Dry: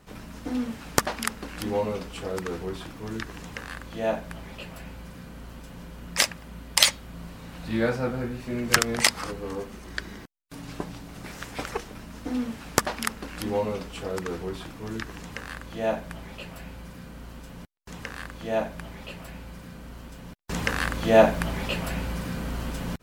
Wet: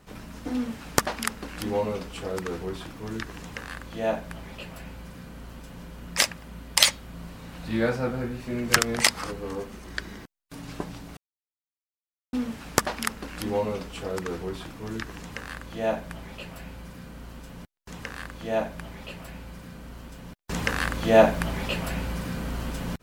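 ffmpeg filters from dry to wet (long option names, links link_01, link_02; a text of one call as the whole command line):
ffmpeg -i in.wav -filter_complex "[0:a]asplit=3[link_01][link_02][link_03];[link_01]atrim=end=11.17,asetpts=PTS-STARTPTS,afade=type=out:start_time=11.166:duration=0.004:curve=hsin[link_04];[link_02]atrim=start=11.17:end=12.33,asetpts=PTS-STARTPTS,volume=0[link_05];[link_03]atrim=start=12.33,asetpts=PTS-STARTPTS,afade=type=in:duration=0.004:curve=hsin[link_06];[link_04][link_05][link_06]concat=n=3:v=0:a=1" out.wav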